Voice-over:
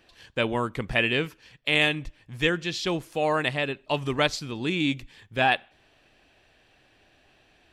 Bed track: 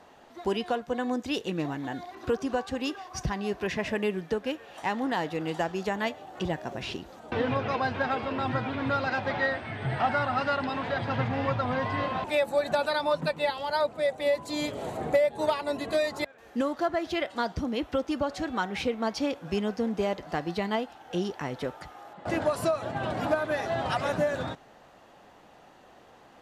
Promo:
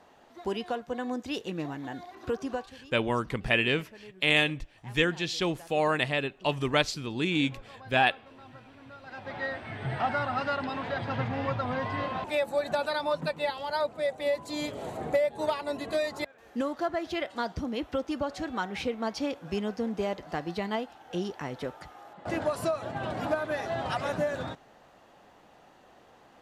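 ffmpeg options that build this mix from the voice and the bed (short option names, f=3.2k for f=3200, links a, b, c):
-filter_complex "[0:a]adelay=2550,volume=-1.5dB[a];[1:a]volume=15dB,afade=t=out:st=2.53:d=0.22:silence=0.133352,afade=t=in:st=9.02:d=0.72:silence=0.11885[b];[a][b]amix=inputs=2:normalize=0"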